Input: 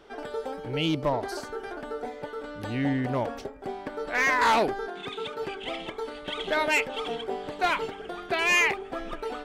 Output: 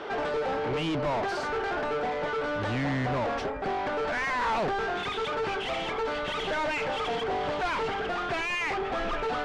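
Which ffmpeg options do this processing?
-filter_complex "[0:a]asubboost=boost=6.5:cutoff=120,asplit=2[s0][s1];[s1]highpass=f=720:p=1,volume=63.1,asoftclip=type=tanh:threshold=0.211[s2];[s0][s2]amix=inputs=2:normalize=0,lowpass=f=1500:p=1,volume=0.501,lowpass=6800,volume=0.422"

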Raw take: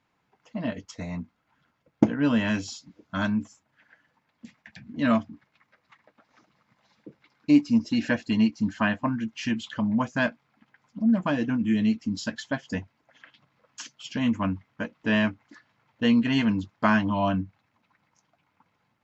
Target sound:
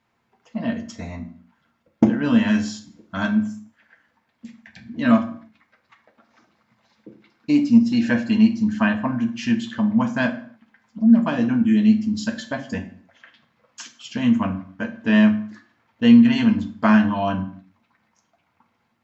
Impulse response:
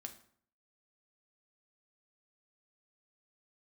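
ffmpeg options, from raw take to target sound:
-filter_complex "[1:a]atrim=start_sample=2205,afade=t=out:st=0.36:d=0.01,atrim=end_sample=16317[s0];[0:a][s0]afir=irnorm=-1:irlink=0,volume=2.37"

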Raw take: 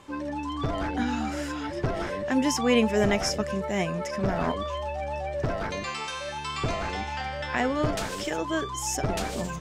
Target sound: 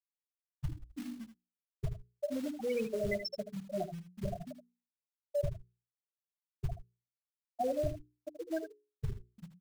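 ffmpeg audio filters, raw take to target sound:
-filter_complex "[0:a]afftfilt=real='re*gte(hypot(re,im),0.316)':imag='im*gte(hypot(re,im),0.316)':win_size=1024:overlap=0.75,asplit=2[s0][s1];[s1]acrusher=bits=4:mode=log:mix=0:aa=0.000001,volume=0.501[s2];[s0][s2]amix=inputs=2:normalize=0,alimiter=limit=0.106:level=0:latency=1:release=49,equalizer=f=230:w=0.87:g=-13,bandreject=f=60:t=h:w=6,bandreject=f=120:t=h:w=6,bandreject=f=180:t=h:w=6,bandreject=f=240:t=h:w=6,bandreject=f=300:t=h:w=6,bandreject=f=360:t=h:w=6,bandreject=f=420:t=h:w=6,asplit=2[s3][s4];[s4]aecho=0:1:78:0.299[s5];[s3][s5]amix=inputs=2:normalize=0"

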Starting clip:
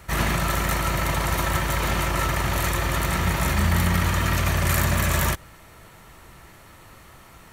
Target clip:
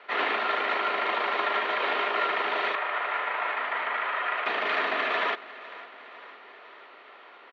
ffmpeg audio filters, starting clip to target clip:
-filter_complex "[0:a]asettb=1/sr,asplit=3[s0][s1][s2];[s0]atrim=end=2.754[s3];[s1]atrim=start=2.75:end=4.46,asetpts=PTS-STARTPTS,afade=t=in:d=0.004:c=qsin,afade=t=out:st=1.706:d=0.004:c=qsin,acrossover=split=480 2700:gain=0.158 1 0.158[s4][s5][s6];[s4][s5][s6]amix=inputs=3:normalize=0[s7];[s2]atrim=start=4.456[s8];[s3][s7]acrossfade=d=0.004:c1=hsin:c2=qsin[s9];[s9][s8]acrossfade=d=0.004:c1=qsin:c2=hsin,highpass=f=320:t=q:w=0.5412,highpass=f=320:t=q:w=1.307,lowpass=f=3600:t=q:w=0.5176,lowpass=f=3600:t=q:w=0.7071,lowpass=f=3600:t=q:w=1.932,afreqshift=57,aecho=1:1:503|1006|1509|2012|2515:0.126|0.0743|0.0438|0.0259|0.0153"

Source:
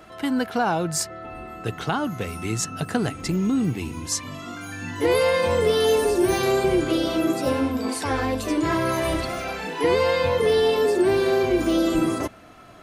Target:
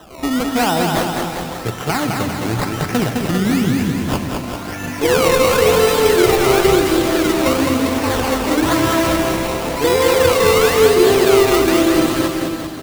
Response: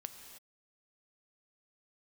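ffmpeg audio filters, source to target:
-filter_complex "[0:a]acrusher=samples=19:mix=1:aa=0.000001:lfo=1:lforange=19:lforate=0.98,aecho=1:1:210|399|569.1|722.2|860:0.631|0.398|0.251|0.158|0.1,asplit=2[s0][s1];[1:a]atrim=start_sample=2205[s2];[s1][s2]afir=irnorm=-1:irlink=0,volume=2.66[s3];[s0][s3]amix=inputs=2:normalize=0,volume=0.668"

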